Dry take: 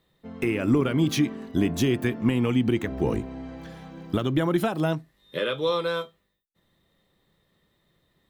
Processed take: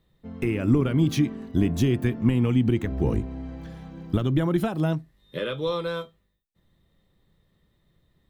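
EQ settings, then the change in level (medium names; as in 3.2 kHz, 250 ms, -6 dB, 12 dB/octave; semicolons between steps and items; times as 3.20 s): bass shelf 73 Hz +5.5 dB; bass shelf 220 Hz +9.5 dB; -4.0 dB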